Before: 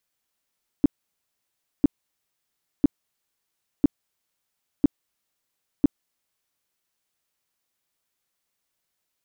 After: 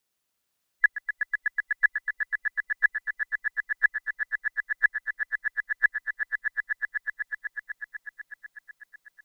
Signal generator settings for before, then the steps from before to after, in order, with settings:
tone bursts 287 Hz, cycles 5, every 1.00 s, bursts 6, -11 dBFS
band inversion scrambler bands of 2000 Hz; swelling echo 0.124 s, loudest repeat 5, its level -8 dB

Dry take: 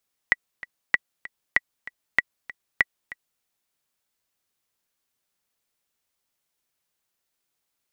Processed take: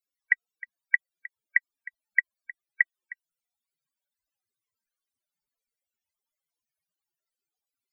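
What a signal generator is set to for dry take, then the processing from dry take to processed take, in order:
metronome 193 bpm, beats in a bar 2, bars 5, 1950 Hz, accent 18.5 dB -4 dBFS
loudest bins only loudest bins 32

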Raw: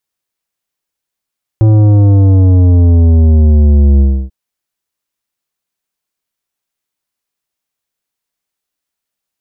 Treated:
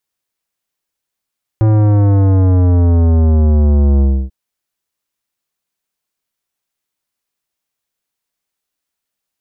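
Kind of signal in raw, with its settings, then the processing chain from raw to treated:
sub drop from 110 Hz, over 2.69 s, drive 11 dB, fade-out 0.30 s, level -5 dB
soft clip -7.5 dBFS

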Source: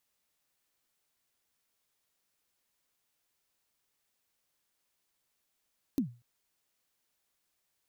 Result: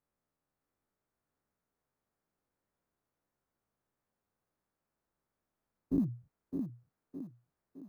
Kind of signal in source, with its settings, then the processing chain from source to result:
kick drum length 0.24 s, from 300 Hz, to 120 Hz, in 0.103 s, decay 0.32 s, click on, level -22 dB
spectral dilation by 0.12 s; EQ curve 180 Hz 0 dB, 1400 Hz -8 dB, 3000 Hz -23 dB; on a send: thinning echo 0.612 s, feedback 52%, high-pass 160 Hz, level -5 dB

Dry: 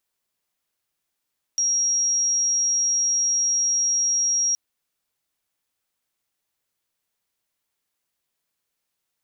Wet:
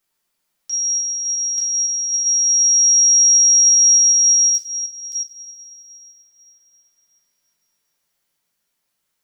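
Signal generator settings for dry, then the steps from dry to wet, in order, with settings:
tone sine 5640 Hz -18.5 dBFS 2.97 s
reverse delay 0.372 s, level -7 dB; on a send: reverse echo 0.885 s -5 dB; on the sum: two-slope reverb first 0.43 s, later 4 s, from -18 dB, DRR -3 dB

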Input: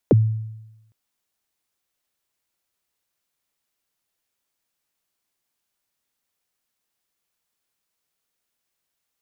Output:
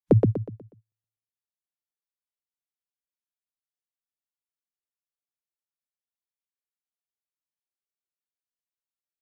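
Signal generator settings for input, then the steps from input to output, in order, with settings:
kick drum length 0.81 s, from 580 Hz, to 110 Hz, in 27 ms, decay 0.98 s, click off, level -8.5 dB
spectral noise reduction 26 dB; on a send: feedback echo 0.122 s, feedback 36%, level -4 dB

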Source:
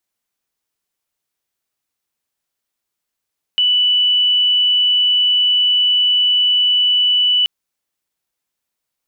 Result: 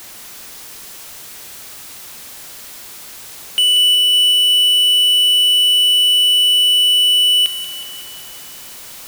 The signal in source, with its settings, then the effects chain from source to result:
tone sine 2970 Hz -11 dBFS 3.88 s
power-law curve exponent 0.35; thin delay 0.184 s, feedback 63%, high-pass 2600 Hz, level -6.5 dB

